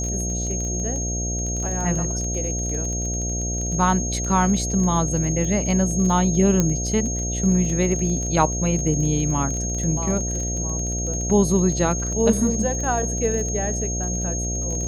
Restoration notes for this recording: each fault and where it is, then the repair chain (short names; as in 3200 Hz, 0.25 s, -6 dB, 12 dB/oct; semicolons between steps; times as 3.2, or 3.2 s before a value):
buzz 60 Hz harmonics 12 -27 dBFS
crackle 23/s -27 dBFS
tone 6500 Hz -27 dBFS
6.6 pop -6 dBFS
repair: de-click; notch 6500 Hz, Q 30; de-hum 60 Hz, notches 12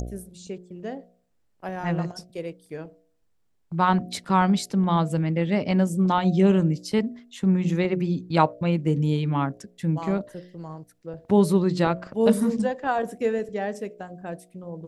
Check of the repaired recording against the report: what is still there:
none